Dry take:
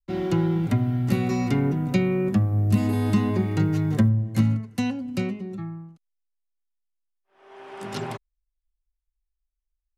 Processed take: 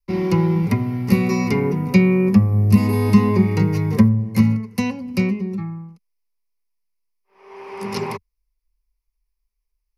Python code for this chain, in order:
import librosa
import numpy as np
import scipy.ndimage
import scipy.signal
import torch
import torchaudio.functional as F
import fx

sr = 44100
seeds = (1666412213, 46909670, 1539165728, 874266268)

y = fx.ripple_eq(x, sr, per_octave=0.85, db=12)
y = y * librosa.db_to_amplitude(4.0)